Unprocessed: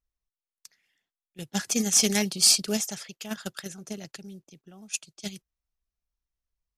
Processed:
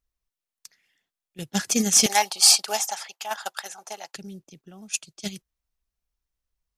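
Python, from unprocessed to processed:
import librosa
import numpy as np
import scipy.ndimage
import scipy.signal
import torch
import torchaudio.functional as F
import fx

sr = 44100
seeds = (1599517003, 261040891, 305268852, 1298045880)

y = fx.highpass_res(x, sr, hz=830.0, q=5.3, at=(2.06, 4.14))
y = F.gain(torch.from_numpy(y), 3.5).numpy()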